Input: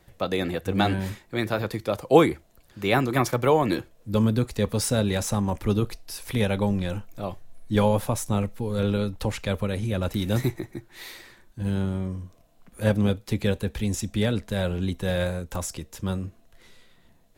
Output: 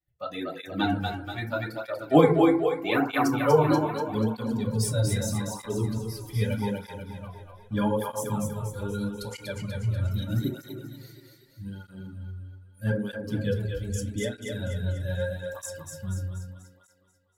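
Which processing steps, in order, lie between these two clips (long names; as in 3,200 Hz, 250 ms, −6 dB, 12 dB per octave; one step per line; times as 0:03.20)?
spectral dynamics exaggerated over time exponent 1.5
0:08.25–0:09.34: flat-topped bell 7,700 Hz +10 dB
feedback delay network reverb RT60 0.56 s, low-frequency decay 0.9×, high-frequency decay 0.35×, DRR 0.5 dB
noise reduction from a noise print of the clip's start 8 dB
on a send: echo with a time of its own for lows and highs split 350 Hz, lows 130 ms, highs 242 ms, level −4 dB
on the sum: through-zero flanger with one copy inverted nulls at 0.8 Hz, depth 4.8 ms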